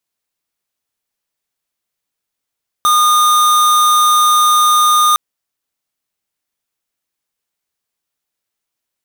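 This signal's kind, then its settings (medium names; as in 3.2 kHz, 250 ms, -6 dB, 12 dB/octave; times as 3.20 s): tone square 1.22 kHz -10.5 dBFS 2.31 s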